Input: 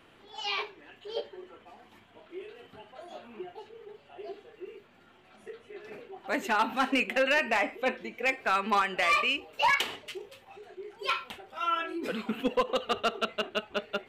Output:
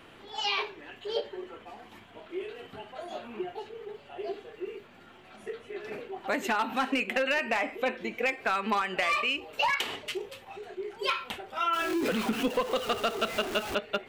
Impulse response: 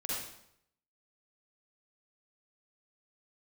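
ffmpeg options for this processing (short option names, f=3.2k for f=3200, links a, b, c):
-filter_complex "[0:a]asettb=1/sr,asplit=3[a][b][c];[a]atrim=end=11.734[d];[b]atrim=start=11.73:end=13.75,asetpts=PTS-STARTPTS,afade=t=in:d=0.004:c=qsin,afade=t=out:st=2.016:d=0.004:c=qsin,aeval=exprs='val(0)+0.5*0.0178*sgn(val(0))':c=same[e];[c]atrim=start=13.746[f];[d][e]acrossfade=d=0.004:c1=hsin:c2=qsin[g];[g][f]acrossfade=d=0.004:c1=qsin:c2=hsin,acompressor=threshold=-32dB:ratio=4,volume=6dB"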